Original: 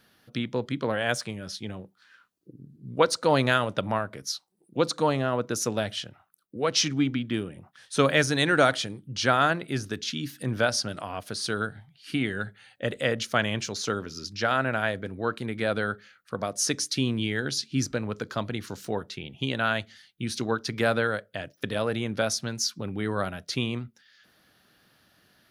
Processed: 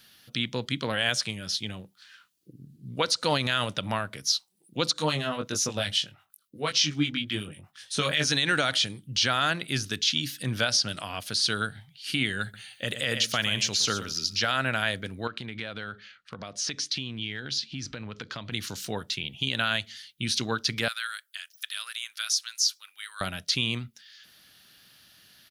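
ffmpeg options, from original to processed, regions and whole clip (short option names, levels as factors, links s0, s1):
-filter_complex "[0:a]asettb=1/sr,asplit=3[s0][s1][s2];[s0]atrim=end=4.934[s3];[s1]atrim=start=4.93:end=8.32,asetpts=PTS-STARTPTS,afade=t=in:d=0.004:c=qsin,afade=t=out:st=3.386:d=0.004:c=qsin,acrossover=split=1300[s4][s5];[s4]aeval=exprs='val(0)*(1-0.7/2+0.7/2*cos(2*PI*8.2*n/s))':c=same[s6];[s5]aeval=exprs='val(0)*(1-0.7/2-0.7/2*cos(2*PI*8.2*n/s))':c=same[s7];[s6][s7]amix=inputs=2:normalize=0,asplit=2[s8][s9];[s9]adelay=20,volume=0.596[s10];[s8][s10]amix=inputs=2:normalize=0,atrim=end_sample=149499[s11];[s2]atrim=start=8.316[s12];[s3][s11]acrossfade=d=0.004:c1=hsin:c2=qsin[s13];[s13][s12]acrossfade=d=0.004:c1=qsin:c2=hsin,asettb=1/sr,asplit=3[s14][s15][s16];[s14]atrim=end=12.424[s17];[s15]atrim=start=12.42:end=14.46,asetpts=PTS-STARTPTS,afade=t=in:d=0.004:c=qsin,afade=t=out:st=2.036:d=0.004:c=qsin,highshelf=f=10000:g=9.5,aecho=1:1:116:0.224,atrim=end_sample=89964[s18];[s16]atrim=start=14.456[s19];[s17][s18]acrossfade=d=0.004:c1=hsin:c2=qsin[s20];[s20][s19]acrossfade=d=0.004:c1=qsin:c2=hsin,asettb=1/sr,asplit=3[s21][s22][s23];[s21]atrim=end=15.274[s24];[s22]atrim=start=15.27:end=18.52,asetpts=PTS-STARTPTS,afade=t=in:d=0.004:c=qsin,afade=t=out:st=3.246:d=0.004:c=qsin,lowpass=3900,acompressor=threshold=0.0224:ratio=4:attack=3.2:release=140:knee=1:detection=peak[s25];[s23]atrim=start=18.516[s26];[s24][s25]acrossfade=d=0.004:c1=hsin:c2=qsin[s27];[s27][s26]acrossfade=d=0.004:c1=qsin:c2=hsin,asettb=1/sr,asplit=3[s28][s29][s30];[s28]atrim=end=20.884[s31];[s29]atrim=start=20.88:end=23.21,asetpts=PTS-STARTPTS,afade=t=in:d=0.004:c=qsin,afade=t=out:st=2.326:d=0.004:c=qsin,highpass=f=1300:t=q:w=2.2,aderivative[s32];[s30]atrim=start=23.206[s33];[s31][s32]acrossfade=d=0.004:c1=hsin:c2=qsin[s34];[s34][s33]acrossfade=d=0.004:c1=qsin:c2=hsin,acrossover=split=5900[s35][s36];[s36]acompressor=threshold=0.00447:ratio=4:attack=1:release=60[s37];[s35][s37]amix=inputs=2:normalize=0,firequalizer=gain_entry='entry(140,0);entry(380,-5);entry(3000,10)':delay=0.05:min_phase=1,alimiter=limit=0.237:level=0:latency=1:release=70"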